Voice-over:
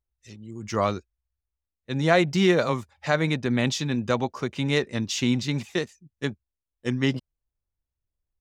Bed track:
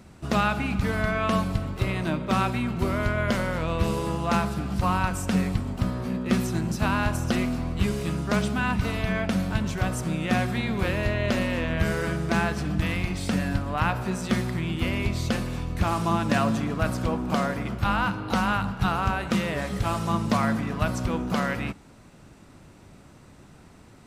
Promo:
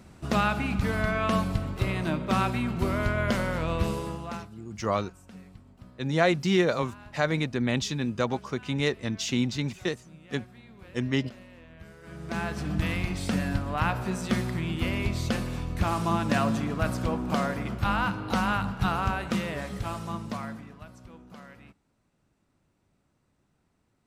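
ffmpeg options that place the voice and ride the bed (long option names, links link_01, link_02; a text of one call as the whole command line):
ffmpeg -i stem1.wav -i stem2.wav -filter_complex "[0:a]adelay=4100,volume=-3dB[link_01];[1:a]volume=20dB,afade=type=out:start_time=3.74:duration=0.75:silence=0.0794328,afade=type=in:start_time=12.02:duration=0.75:silence=0.0841395,afade=type=out:start_time=18.98:duration=1.87:silence=0.105925[link_02];[link_01][link_02]amix=inputs=2:normalize=0" out.wav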